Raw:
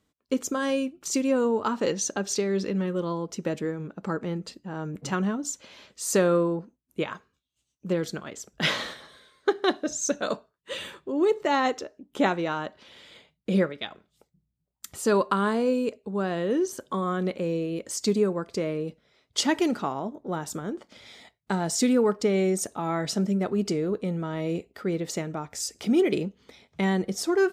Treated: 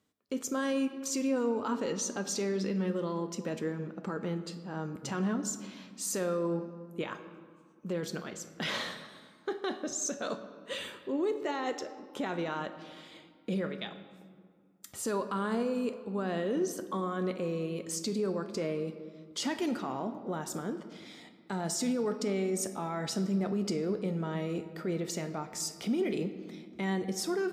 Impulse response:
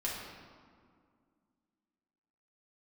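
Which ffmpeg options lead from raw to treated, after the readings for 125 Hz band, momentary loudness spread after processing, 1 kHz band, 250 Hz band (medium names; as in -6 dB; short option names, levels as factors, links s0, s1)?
-5.5 dB, 11 LU, -7.5 dB, -6.0 dB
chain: -filter_complex "[0:a]highpass=89,alimiter=limit=0.0841:level=0:latency=1:release=23,asplit=2[s0][s1];[1:a]atrim=start_sample=2205,highshelf=f=11000:g=8[s2];[s1][s2]afir=irnorm=-1:irlink=0,volume=0.335[s3];[s0][s3]amix=inputs=2:normalize=0,volume=0.531"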